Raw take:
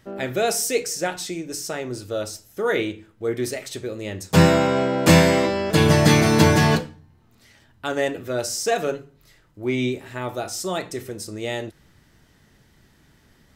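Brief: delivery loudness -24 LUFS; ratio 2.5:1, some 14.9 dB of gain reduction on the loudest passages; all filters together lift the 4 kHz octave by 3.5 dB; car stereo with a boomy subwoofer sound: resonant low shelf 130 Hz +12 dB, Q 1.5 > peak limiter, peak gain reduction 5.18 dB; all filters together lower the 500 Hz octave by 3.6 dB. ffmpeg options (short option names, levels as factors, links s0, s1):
-af "equalizer=f=500:t=o:g=-3.5,equalizer=f=4000:t=o:g=4.5,acompressor=threshold=0.0224:ratio=2.5,lowshelf=f=130:t=q:w=1.5:g=12,volume=2.37,alimiter=limit=0.282:level=0:latency=1"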